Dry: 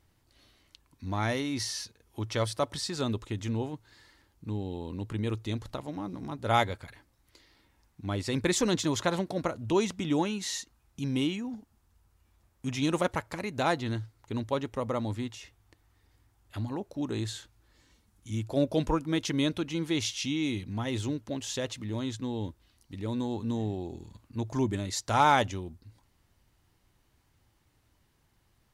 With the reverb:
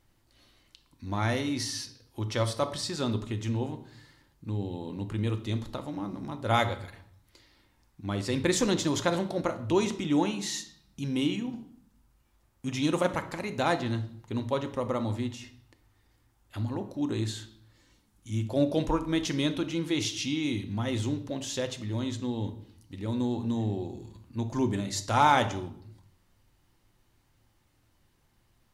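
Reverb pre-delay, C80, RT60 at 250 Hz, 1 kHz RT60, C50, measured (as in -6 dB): 3 ms, 16.5 dB, 0.95 s, 0.65 s, 12.5 dB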